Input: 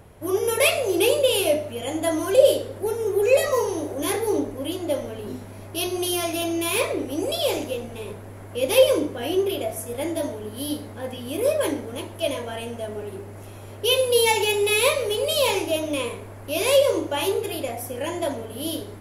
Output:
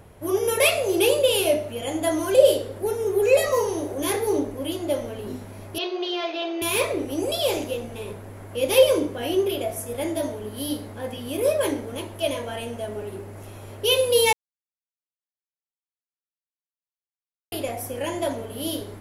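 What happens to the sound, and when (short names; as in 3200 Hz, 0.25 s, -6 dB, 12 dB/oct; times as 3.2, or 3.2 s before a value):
5.78–6.62 elliptic band-pass 370–4200 Hz
14.33–17.52 mute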